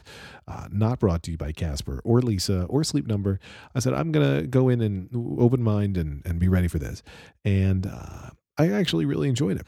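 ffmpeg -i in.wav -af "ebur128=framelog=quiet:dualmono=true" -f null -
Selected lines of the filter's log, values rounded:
Integrated loudness:
  I:         -21.6 LUFS
  Threshold: -32.1 LUFS
Loudness range:
  LRA:         2.3 LU
  Threshold: -41.8 LUFS
  LRA low:   -23.0 LUFS
  LRA high:  -20.7 LUFS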